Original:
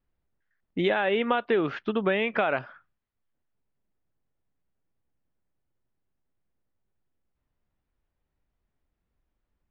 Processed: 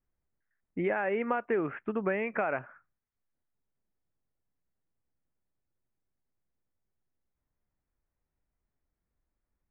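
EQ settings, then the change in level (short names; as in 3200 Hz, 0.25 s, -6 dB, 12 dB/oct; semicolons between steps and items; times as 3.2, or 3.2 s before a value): steep low-pass 2400 Hz 48 dB/oct; -5.0 dB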